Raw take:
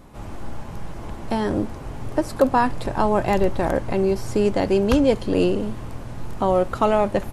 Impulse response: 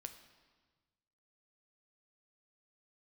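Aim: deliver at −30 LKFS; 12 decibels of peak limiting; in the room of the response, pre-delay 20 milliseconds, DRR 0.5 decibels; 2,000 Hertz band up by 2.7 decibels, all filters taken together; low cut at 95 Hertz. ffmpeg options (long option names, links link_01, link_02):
-filter_complex "[0:a]highpass=95,equalizer=frequency=2000:width_type=o:gain=3.5,alimiter=limit=-17dB:level=0:latency=1,asplit=2[link_01][link_02];[1:a]atrim=start_sample=2205,adelay=20[link_03];[link_02][link_03]afir=irnorm=-1:irlink=0,volume=4dB[link_04];[link_01][link_04]amix=inputs=2:normalize=0,volume=-5dB"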